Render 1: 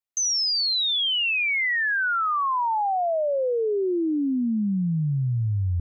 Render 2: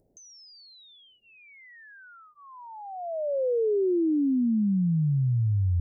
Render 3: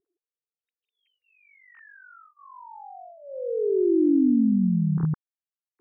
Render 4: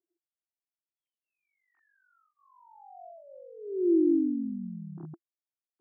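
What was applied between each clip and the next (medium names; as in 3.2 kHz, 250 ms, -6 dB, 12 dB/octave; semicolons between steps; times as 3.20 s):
inverse Chebyshev low-pass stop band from 1.1 kHz, stop band 40 dB; upward compressor, threshold -38 dBFS
formants replaced by sine waves; tilt shelf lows +7 dB, about 910 Hz; static phaser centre 1.5 kHz, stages 4
two resonant band-passes 470 Hz, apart 0.94 oct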